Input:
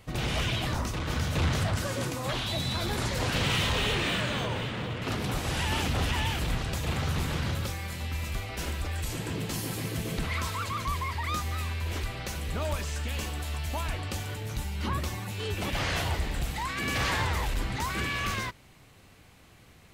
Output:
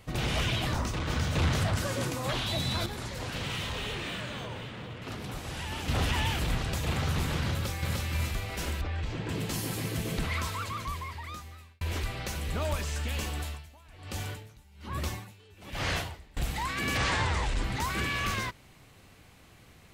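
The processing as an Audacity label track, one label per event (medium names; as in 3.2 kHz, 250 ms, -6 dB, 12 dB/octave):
0.760000	1.390000	peaking EQ 12 kHz -9.5 dB 0.32 oct
2.860000	5.880000	gain -7.5 dB
7.520000	8.010000	echo throw 300 ms, feedback 35%, level -1.5 dB
8.810000	9.290000	distance through air 190 m
10.260000	11.810000	fade out linear
13.400000	16.370000	logarithmic tremolo 1.2 Hz, depth 24 dB
16.970000	17.640000	steep low-pass 9.1 kHz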